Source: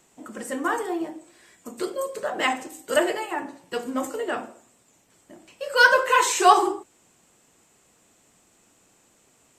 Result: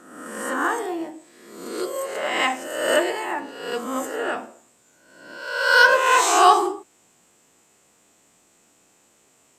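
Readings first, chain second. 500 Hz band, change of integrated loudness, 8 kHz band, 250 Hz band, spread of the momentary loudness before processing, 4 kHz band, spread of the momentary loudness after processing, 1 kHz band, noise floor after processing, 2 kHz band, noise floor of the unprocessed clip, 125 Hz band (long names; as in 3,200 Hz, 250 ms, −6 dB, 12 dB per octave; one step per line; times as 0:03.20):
+1.5 dB, +2.5 dB, +2.5 dB, +0.5 dB, 16 LU, +3.5 dB, 18 LU, +2.5 dB, −60 dBFS, +3.0 dB, −62 dBFS, can't be measured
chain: peak hold with a rise ahead of every peak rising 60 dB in 0.95 s
low-shelf EQ 130 Hz −7.5 dB
level −1 dB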